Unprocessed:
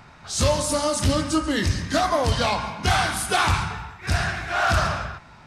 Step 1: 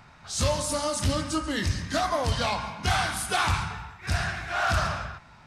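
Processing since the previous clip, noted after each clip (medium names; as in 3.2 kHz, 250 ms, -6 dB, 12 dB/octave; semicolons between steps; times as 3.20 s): peaking EQ 370 Hz -3.5 dB 1.2 oct; trim -4 dB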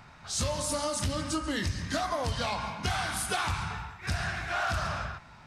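compression, threshold -27 dBFS, peak gain reduction 7.5 dB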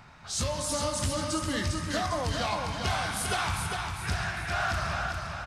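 feedback delay 401 ms, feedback 44%, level -5 dB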